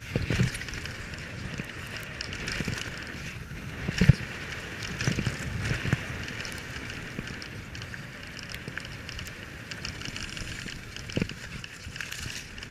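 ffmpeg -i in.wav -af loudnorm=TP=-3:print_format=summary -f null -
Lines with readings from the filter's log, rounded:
Input Integrated:    -33.5 LUFS
Input True Peak:      -3.6 dBTP
Input LRA:             7.8 LU
Input Threshold:     -43.5 LUFS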